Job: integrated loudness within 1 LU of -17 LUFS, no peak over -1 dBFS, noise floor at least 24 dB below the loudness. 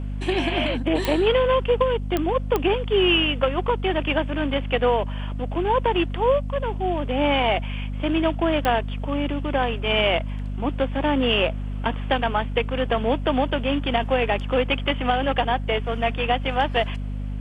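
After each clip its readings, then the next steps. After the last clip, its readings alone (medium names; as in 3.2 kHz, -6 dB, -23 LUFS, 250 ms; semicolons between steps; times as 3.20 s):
clicks found 4; hum 50 Hz; highest harmonic 250 Hz; hum level -26 dBFS; loudness -23.0 LUFS; peak level -7.0 dBFS; loudness target -17.0 LUFS
-> de-click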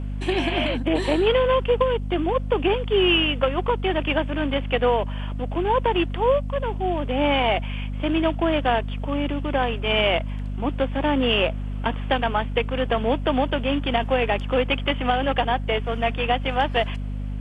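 clicks found 0; hum 50 Hz; highest harmonic 250 Hz; hum level -26 dBFS
-> hum notches 50/100/150/200/250 Hz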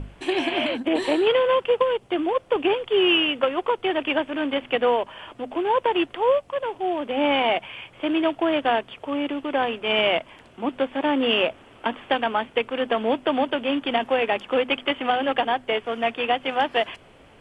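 hum not found; loudness -23.5 LUFS; peak level -8.0 dBFS; loudness target -17.0 LUFS
-> trim +6.5 dB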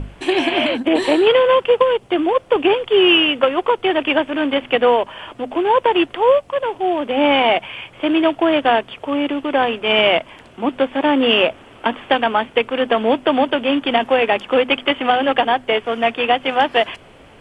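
loudness -17.0 LUFS; peak level -1.5 dBFS; noise floor -45 dBFS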